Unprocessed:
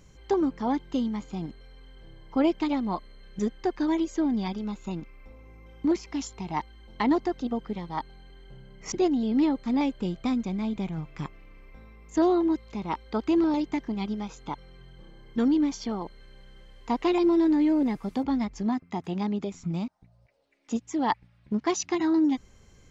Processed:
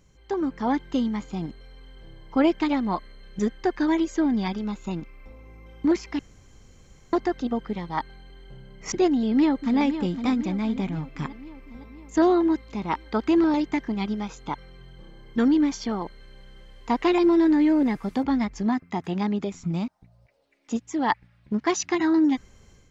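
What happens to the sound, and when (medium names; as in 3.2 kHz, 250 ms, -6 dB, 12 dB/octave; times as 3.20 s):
6.19–7.13 s: room tone
9.11–9.79 s: echo throw 510 ms, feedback 60%, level -10 dB
whole clip: dynamic bell 1.7 kHz, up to +6 dB, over -51 dBFS, Q 1.8; level rider gain up to 8 dB; trim -5 dB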